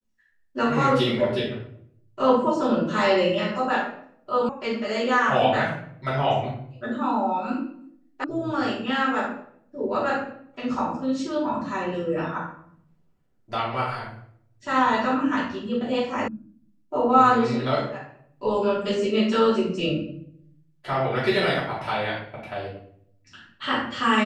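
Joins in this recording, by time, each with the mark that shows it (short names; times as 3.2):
4.49 sound cut off
8.24 sound cut off
16.28 sound cut off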